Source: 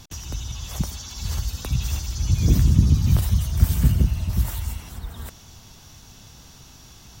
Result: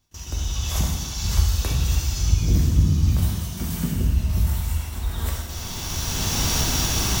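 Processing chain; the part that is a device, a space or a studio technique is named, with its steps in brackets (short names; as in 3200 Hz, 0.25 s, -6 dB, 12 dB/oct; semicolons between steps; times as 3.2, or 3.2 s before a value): cheap recorder with automatic gain (white noise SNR 36 dB; recorder AGC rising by 13 dB/s); gate with hold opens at -21 dBFS; 3.17–3.96 resonant low shelf 130 Hz -11 dB, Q 1.5; non-linear reverb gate 0.42 s falling, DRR -2.5 dB; gain -5.5 dB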